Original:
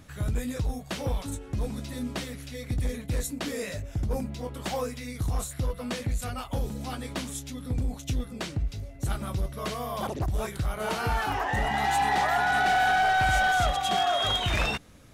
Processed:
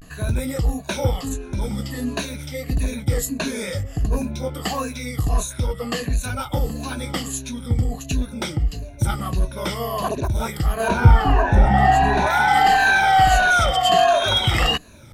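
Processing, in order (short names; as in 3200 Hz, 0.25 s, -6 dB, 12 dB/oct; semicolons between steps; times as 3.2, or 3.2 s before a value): moving spectral ripple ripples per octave 1.5, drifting -1.5 Hz, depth 14 dB; 10.89–12.25 tilt -3 dB/oct; vibrato 0.49 Hz 85 cents; gain +5.5 dB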